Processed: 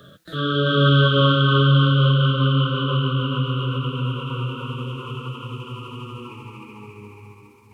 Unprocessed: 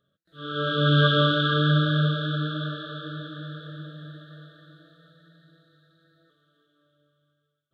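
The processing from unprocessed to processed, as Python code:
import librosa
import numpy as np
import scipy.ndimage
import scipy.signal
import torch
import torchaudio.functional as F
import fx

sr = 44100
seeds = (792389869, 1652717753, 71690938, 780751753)

y = fx.pitch_glide(x, sr, semitones=-6.5, runs='starting unshifted')
y = fx.echo_split(y, sr, split_hz=1200.0, low_ms=427, high_ms=255, feedback_pct=52, wet_db=-12)
y = fx.band_squash(y, sr, depth_pct=70)
y = y * 10.0 ** (7.0 / 20.0)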